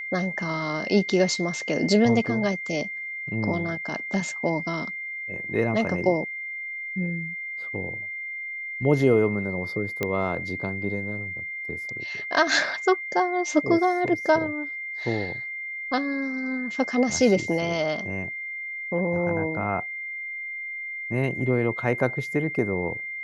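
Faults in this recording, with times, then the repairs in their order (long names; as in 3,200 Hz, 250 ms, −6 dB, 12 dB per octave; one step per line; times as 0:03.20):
whistle 2,100 Hz −31 dBFS
0:10.03: click −11 dBFS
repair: click removal
notch filter 2,100 Hz, Q 30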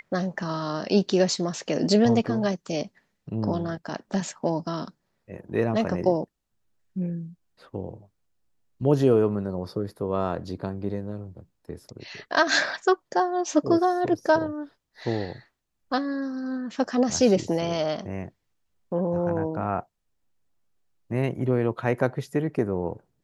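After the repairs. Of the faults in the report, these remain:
none of them is left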